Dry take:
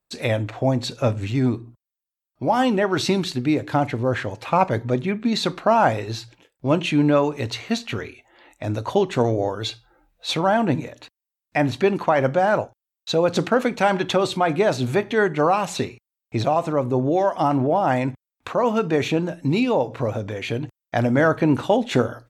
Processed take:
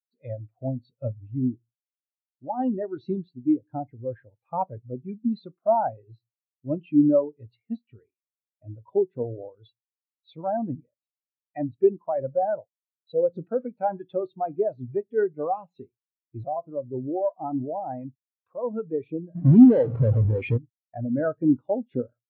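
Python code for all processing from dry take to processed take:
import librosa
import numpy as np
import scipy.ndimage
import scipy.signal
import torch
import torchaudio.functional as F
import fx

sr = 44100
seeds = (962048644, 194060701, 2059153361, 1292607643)

y = fx.chain(x, sr, fx.halfwave_hold(),
    fx.env_flatten(amount_pct=70), at=(19.35, 20.58))
y = scipy.signal.sosfilt(scipy.signal.butter(2, 5300.0, 'lowpass', fs=sr, output='sos'), y)
y = fx.spectral_expand(y, sr, expansion=2.5)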